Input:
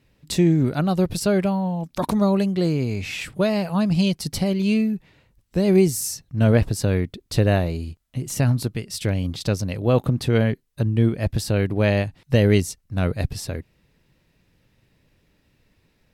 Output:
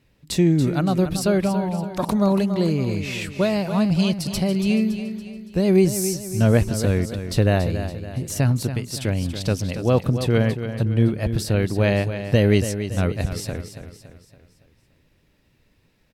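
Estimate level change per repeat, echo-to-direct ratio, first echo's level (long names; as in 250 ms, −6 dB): −7.0 dB, −9.0 dB, −10.0 dB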